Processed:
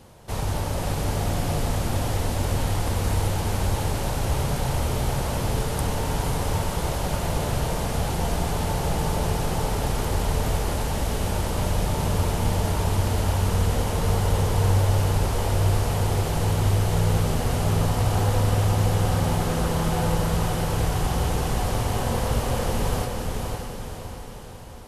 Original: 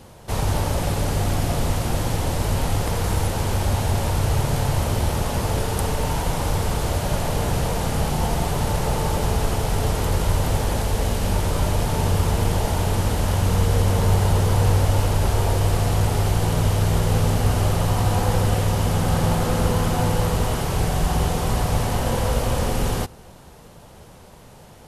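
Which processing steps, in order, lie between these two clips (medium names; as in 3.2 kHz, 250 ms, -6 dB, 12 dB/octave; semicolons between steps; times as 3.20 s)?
echo that smears into a reverb 542 ms, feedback 52%, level -3.5 dB; trim -4.5 dB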